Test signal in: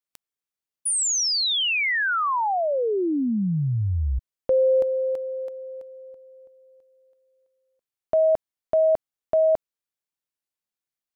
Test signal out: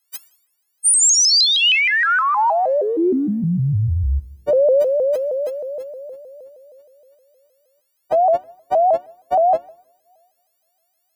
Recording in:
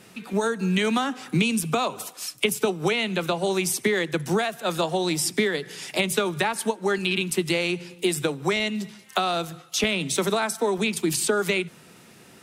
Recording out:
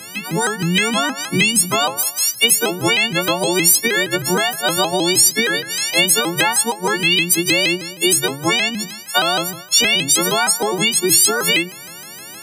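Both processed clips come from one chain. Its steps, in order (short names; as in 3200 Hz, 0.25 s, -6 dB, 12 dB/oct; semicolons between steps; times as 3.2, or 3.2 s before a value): frequency quantiser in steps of 4 st; in parallel at +3 dB: compressor, threshold -26 dBFS; on the sum: two-slope reverb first 0.75 s, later 2.8 s, from -24 dB, DRR 14.5 dB; shaped vibrato saw up 6.4 Hz, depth 160 cents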